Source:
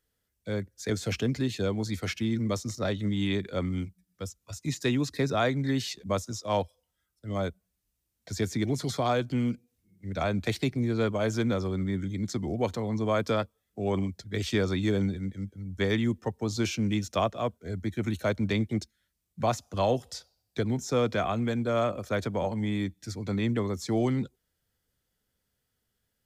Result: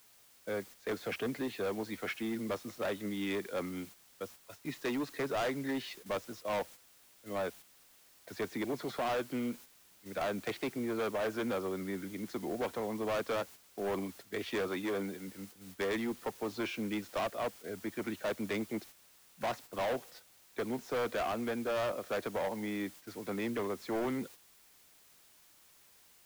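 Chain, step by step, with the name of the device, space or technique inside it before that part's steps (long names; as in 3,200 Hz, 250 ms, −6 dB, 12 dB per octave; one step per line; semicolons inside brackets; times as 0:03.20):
aircraft radio (band-pass filter 350–2,300 Hz; hard clipping −30.5 dBFS, distortion −7 dB; white noise bed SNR 18 dB; noise gate −50 dBFS, range −7 dB)
0:14.68–0:15.28: high-pass filter 150 Hz 6 dB per octave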